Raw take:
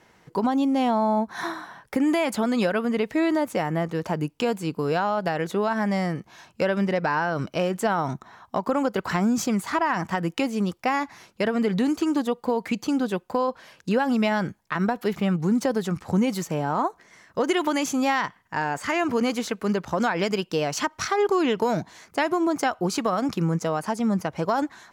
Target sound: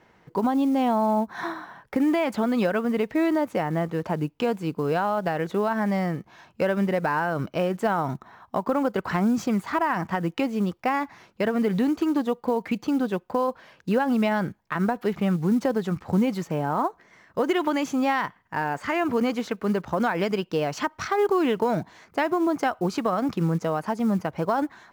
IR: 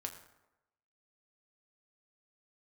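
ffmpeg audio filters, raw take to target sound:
-af "equalizer=f=10k:t=o:w=1.9:g=-13,acrusher=bits=8:mode=log:mix=0:aa=0.000001"

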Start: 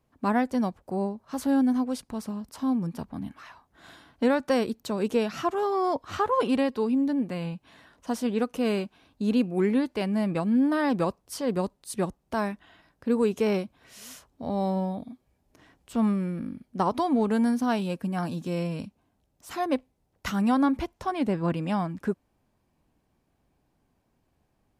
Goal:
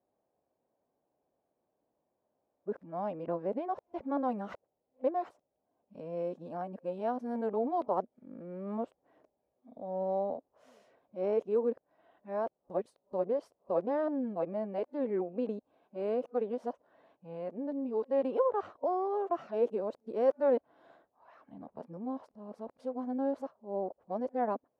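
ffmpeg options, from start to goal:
-af "areverse,bandpass=f=570:t=q:w=2.4:csg=0"

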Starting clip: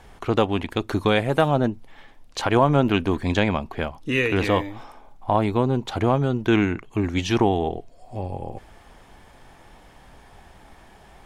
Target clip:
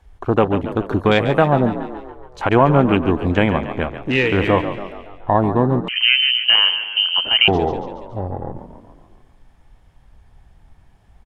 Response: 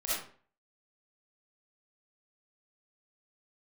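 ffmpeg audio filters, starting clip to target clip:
-filter_complex "[0:a]afwtdn=0.0282,asplit=7[a][b][c][d][e][f][g];[b]adelay=141,afreqshift=49,volume=-11dB[h];[c]adelay=282,afreqshift=98,volume=-16.2dB[i];[d]adelay=423,afreqshift=147,volume=-21.4dB[j];[e]adelay=564,afreqshift=196,volume=-26.6dB[k];[f]adelay=705,afreqshift=245,volume=-31.8dB[l];[g]adelay=846,afreqshift=294,volume=-37dB[m];[a][h][i][j][k][l][m]amix=inputs=7:normalize=0,asettb=1/sr,asplit=3[n][o][p];[n]atrim=end=5.884[q];[o]atrim=start=5.88:end=7.48,asetpts=PTS-STARTPTS,afade=t=in:d=0.004:c=qsin,afade=t=out:st=1.596:d=0.004:c=qsin,lowpass=f=2.7k:t=q:w=0.5098,lowpass=f=2.7k:t=q:w=0.6013,lowpass=f=2.7k:t=q:w=0.9,lowpass=f=2.7k:t=q:w=2.563,afreqshift=-3200[r];[p]atrim=start=7.476[s];[q][r]acrossfade=d=0.004:c1=hsin:c2=qsin[t];[t][s]acrossfade=d=0.004:c1=qsin:c2=hsin,volume=4.5dB"

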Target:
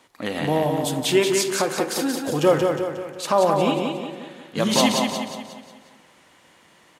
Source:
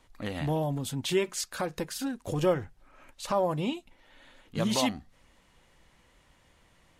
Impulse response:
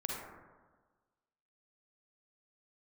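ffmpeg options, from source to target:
-filter_complex "[0:a]highpass=210,aecho=1:1:180|360|540|720|900|1080:0.596|0.274|0.126|0.058|0.0267|0.0123,asplit=2[a][b];[1:a]atrim=start_sample=2205[c];[b][c]afir=irnorm=-1:irlink=0,volume=-9dB[d];[a][d]amix=inputs=2:normalize=0,volume=6.5dB"

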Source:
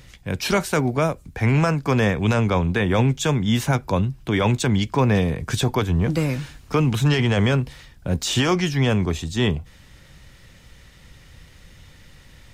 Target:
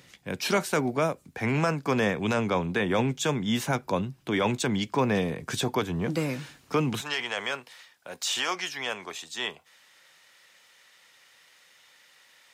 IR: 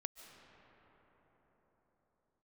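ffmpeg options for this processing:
-af "asetnsamples=n=441:p=0,asendcmd='7.01 highpass f 760',highpass=190,volume=-4dB"

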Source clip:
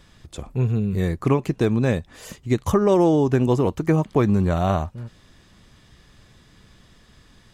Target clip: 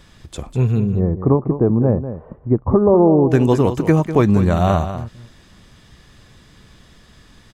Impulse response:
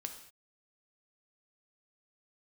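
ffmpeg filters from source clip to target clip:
-filter_complex "[0:a]asettb=1/sr,asplit=3[a][b][c];[a]atrim=end=0.804[d];[b]atrim=start=0.8:end=3.3,asetpts=PTS-STARTPTS,afade=t=in:d=0.004:c=qsin,afade=t=out:st=2.496:d=0.004:c=qsin,lowpass=f=1k:w=0.5412,lowpass=f=1k:w=1.3066[e];[c]atrim=start=3.296[f];[d][e]acrossfade=d=0.004:c1=hsin:c2=qsin[g];[g][f]acrossfade=d=0.004:c1=qsin:c2=hsin,aecho=1:1:197:0.282,volume=4.5dB"

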